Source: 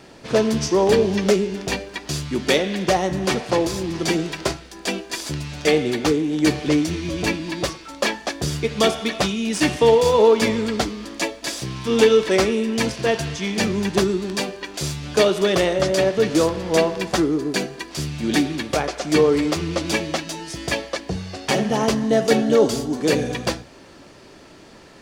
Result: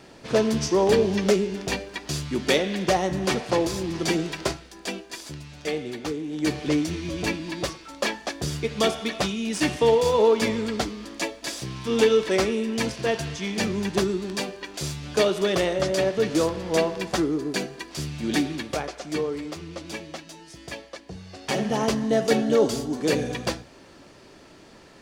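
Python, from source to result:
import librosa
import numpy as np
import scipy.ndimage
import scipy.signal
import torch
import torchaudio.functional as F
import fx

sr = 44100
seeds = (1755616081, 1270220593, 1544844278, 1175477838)

y = fx.gain(x, sr, db=fx.line((4.43, -3.0), (5.41, -11.0), (6.14, -11.0), (6.65, -4.5), (18.53, -4.5), (19.39, -13.0), (21.1, -13.0), (21.65, -4.0)))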